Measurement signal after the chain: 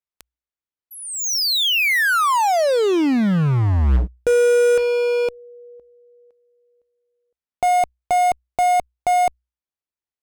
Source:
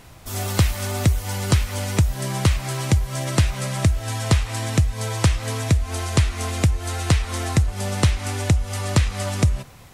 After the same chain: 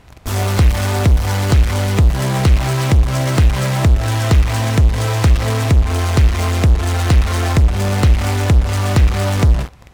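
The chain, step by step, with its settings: low-pass 2.9 kHz 6 dB/octave; peaking EQ 61 Hz +14 dB 0.32 oct; in parallel at -5 dB: fuzz box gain 38 dB, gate -36 dBFS

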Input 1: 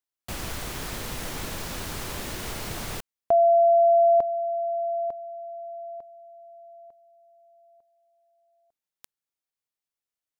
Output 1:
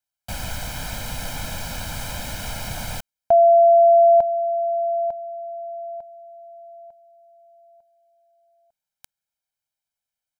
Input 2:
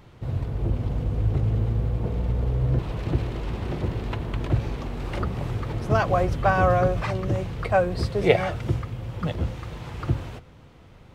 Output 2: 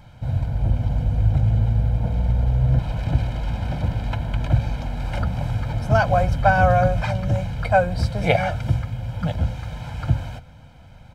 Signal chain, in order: comb 1.3 ms, depth 93%

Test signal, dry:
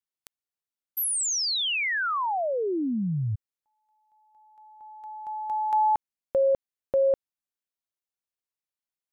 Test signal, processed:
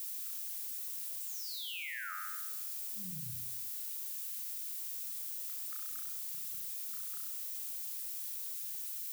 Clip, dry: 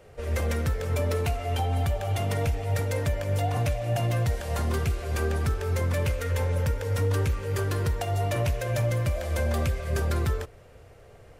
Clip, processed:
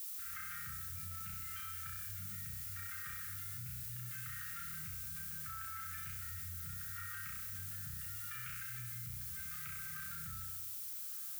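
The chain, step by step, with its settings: FFT band-reject 210–1200 Hz; wah-wah 0.74 Hz 440–1100 Hz, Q 2.8; on a send: flutter echo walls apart 5.6 m, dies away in 0.88 s; on the sum: added noise violet -44 dBFS; level flattener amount 100%; trim -5.5 dB

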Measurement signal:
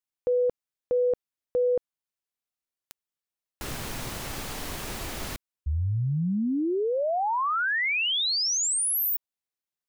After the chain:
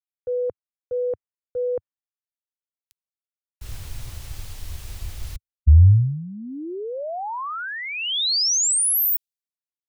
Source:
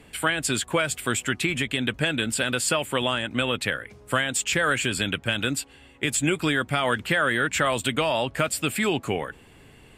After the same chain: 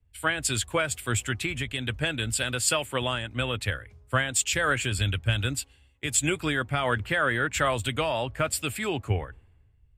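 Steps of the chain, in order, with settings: resonant low shelf 130 Hz +9.5 dB, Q 1.5; three bands expanded up and down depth 100%; trim -3 dB

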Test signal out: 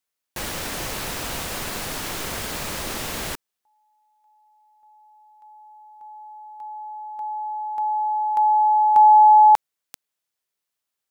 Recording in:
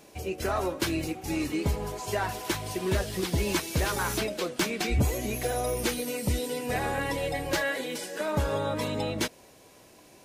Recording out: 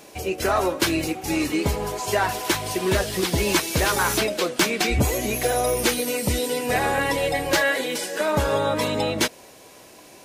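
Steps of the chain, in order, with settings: bass shelf 230 Hz -7 dB; trim +8.5 dB

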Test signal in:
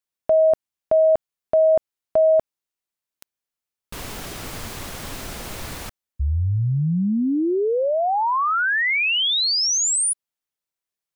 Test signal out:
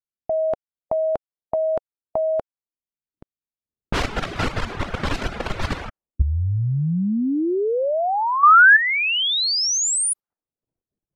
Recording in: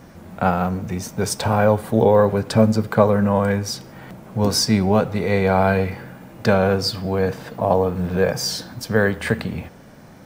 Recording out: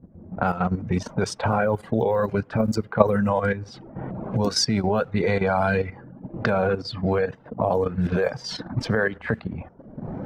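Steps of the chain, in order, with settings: recorder AGC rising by 21 dB/s, up to +22 dB; reverb removal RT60 1 s; level-controlled noise filter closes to 300 Hz, open at -13 dBFS; dynamic bell 1.4 kHz, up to +4 dB, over -41 dBFS, Q 5.6; level held to a coarse grid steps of 11 dB; trim +1 dB

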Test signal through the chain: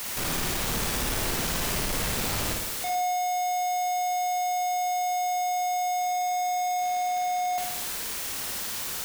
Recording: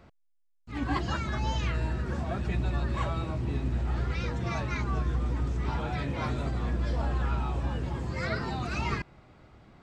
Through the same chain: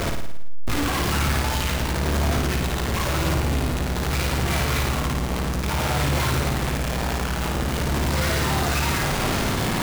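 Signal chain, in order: one-bit comparator; flutter echo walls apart 9.5 m, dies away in 0.78 s; trim +5.5 dB

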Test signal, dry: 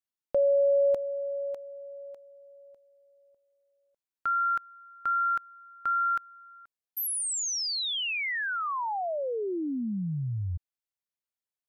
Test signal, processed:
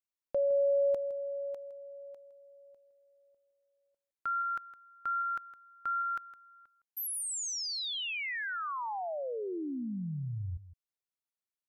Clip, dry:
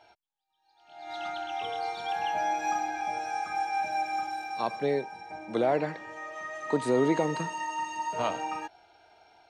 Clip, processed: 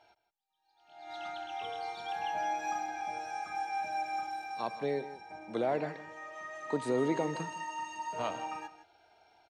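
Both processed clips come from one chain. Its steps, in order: delay 162 ms -15 dB; trim -5.5 dB

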